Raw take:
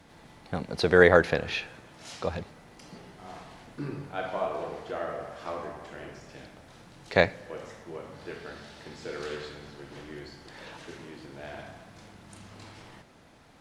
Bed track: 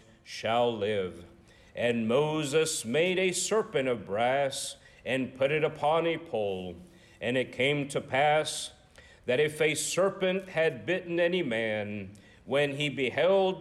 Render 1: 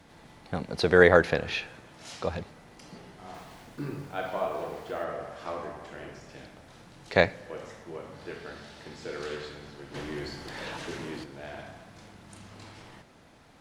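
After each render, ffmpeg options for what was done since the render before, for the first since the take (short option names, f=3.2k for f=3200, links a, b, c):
-filter_complex "[0:a]asettb=1/sr,asplit=3[a][b][c];[a]atrim=end=3.344[d];[b]atrim=start=3.34:end=5.04,asetpts=PTS-STARTPTS,afade=t=in:d=0.004:c=qsin,afade=t=out:st=1.696:d=0.004:c=qsin,acrusher=bits=8:mix=0:aa=0.5[e];[c]atrim=start=5.036[f];[d][e]acrossfade=d=0.004:c1=hsin:c2=qsin[g];[g][f]acrossfade=d=0.004:c1=qsin:c2=hsin,asettb=1/sr,asplit=3[h][i][j];[h]atrim=end=9.944[k];[i]atrim=start=9.94:end=11.24,asetpts=PTS-STARTPTS,afade=t=in:d=0.004:c=qsin,afade=t=out:st=1.296:d=0.004:c=qsin,aeval=exprs='0.0335*sin(PI/2*1.58*val(0)/0.0335)':c=same[l];[j]atrim=start=11.236[m];[k][l]acrossfade=d=0.004:c1=hsin:c2=qsin[n];[n][m]acrossfade=d=0.004:c1=qsin:c2=hsin"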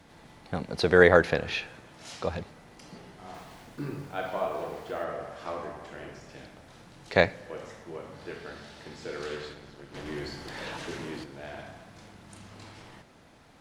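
-filter_complex "[0:a]asettb=1/sr,asplit=3[a][b][c];[a]atrim=end=9.534[d];[b]atrim=start=9.53:end=10.06,asetpts=PTS-STARTPTS,afade=t=in:d=0.004:c=qsin,afade=t=out:st=0.526:d=0.004:c=qsin,tremolo=f=200:d=0.71[e];[c]atrim=start=10.056[f];[d][e]acrossfade=d=0.004:c1=hsin:c2=qsin[g];[g][f]acrossfade=d=0.004:c1=qsin:c2=hsin"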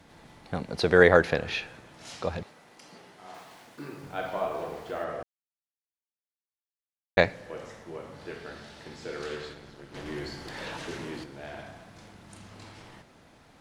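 -filter_complex "[0:a]asettb=1/sr,asplit=3[a][b][c];[a]atrim=end=2.434[d];[b]atrim=start=2.43:end=4.03,asetpts=PTS-STARTPTS,afade=t=in:d=0.004:c=qsin,afade=t=out:st=1.596:d=0.004:c=qsin,highpass=f=430:p=1[e];[c]atrim=start=4.026[f];[d][e]acrossfade=d=0.004:c1=hsin:c2=qsin[g];[g][f]acrossfade=d=0.004:c1=qsin:c2=hsin,asplit=3[h][i][j];[h]atrim=end=5.23,asetpts=PTS-STARTPTS,afade=t=out:st=5.226:d=0.004:c=hsin[k];[i]atrim=start=5.23:end=7.17,asetpts=PTS-STARTPTS,volume=0[l];[j]atrim=start=7.17,asetpts=PTS-STARTPTS,afade=t=in:d=0.004:c=hsin[m];[k][l][m]concat=n=3:v=0:a=1"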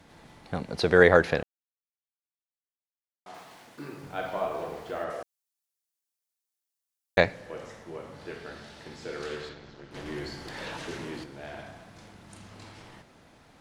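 -filter_complex "[0:a]asettb=1/sr,asplit=3[a][b][c];[a]atrim=end=5.104[d];[b]atrim=start=5.1:end=7.18,asetpts=PTS-STARTPTS,afade=t=in:d=0.004:c=qsin,afade=t=out:st=2.076:d=0.004:c=qsin,bass=f=250:g=-9,treble=f=4k:g=10[e];[c]atrim=start=7.176[f];[d][e]acrossfade=d=0.004:c1=hsin:c2=qsin[g];[g][f]acrossfade=d=0.004:c1=qsin:c2=hsin,asettb=1/sr,asplit=3[h][i][j];[h]atrim=end=9.494[k];[i]atrim=start=9.49:end=9.91,asetpts=PTS-STARTPTS,afade=t=in:d=0.004:c=qsin,afade=t=out:st=0.416:d=0.004:c=qsin,lowpass=f=6.5k:w=0.5412,lowpass=f=6.5k:w=1.3066[l];[j]atrim=start=9.906[m];[k][l]acrossfade=d=0.004:c1=hsin:c2=qsin[n];[n][m]acrossfade=d=0.004:c1=qsin:c2=hsin,asplit=3[o][p][q];[o]atrim=end=1.43,asetpts=PTS-STARTPTS,afade=t=out:st=1.426:d=0.004:c=hsin[r];[p]atrim=start=1.43:end=3.26,asetpts=PTS-STARTPTS,volume=0[s];[q]atrim=start=3.26,asetpts=PTS-STARTPTS,afade=t=in:d=0.004:c=hsin[t];[r][s][t]concat=n=3:v=0:a=1"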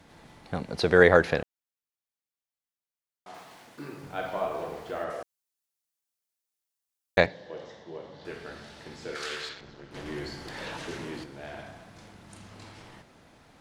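-filter_complex "[0:a]asettb=1/sr,asplit=3[a][b][c];[a]atrim=end=7.264[d];[b]atrim=start=7.26:end=8.25,asetpts=PTS-STARTPTS,afade=t=in:d=0.004:c=qsin,afade=t=out:st=0.986:d=0.004:c=qsin,highpass=100,equalizer=f=110:t=q:w=4:g=-8,equalizer=f=240:t=q:w=4:g=-5,equalizer=f=1.3k:t=q:w=4:g=-10,equalizer=f=2.4k:t=q:w=4:g=-9,equalizer=f=3.6k:t=q:w=4:g=6,lowpass=f=5.5k:w=0.5412,lowpass=f=5.5k:w=1.3066[e];[c]atrim=start=8.246[f];[d][e]acrossfade=d=0.004:c1=hsin:c2=qsin[g];[g][f]acrossfade=d=0.004:c1=qsin:c2=hsin,asettb=1/sr,asplit=3[h][i][j];[h]atrim=end=9.154[k];[i]atrim=start=9.15:end=9.61,asetpts=PTS-STARTPTS,afade=t=in:d=0.004:c=qsin,afade=t=out:st=0.456:d=0.004:c=qsin,tiltshelf=f=840:g=-9[l];[j]atrim=start=9.606[m];[k][l]acrossfade=d=0.004:c1=hsin:c2=qsin[n];[n][m]acrossfade=d=0.004:c1=qsin:c2=hsin"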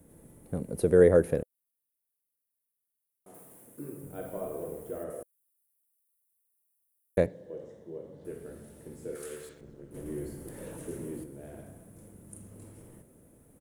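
-af "firequalizer=gain_entry='entry(510,0);entry(750,-14);entry(4500,-23);entry(9600,11)':delay=0.05:min_phase=1"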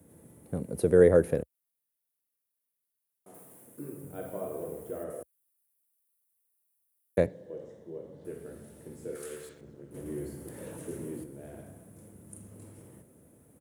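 -af "highpass=f=64:w=0.5412,highpass=f=64:w=1.3066"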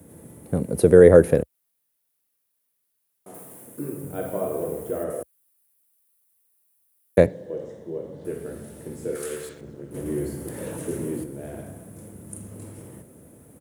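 -af "volume=9.5dB,alimiter=limit=-1dB:level=0:latency=1"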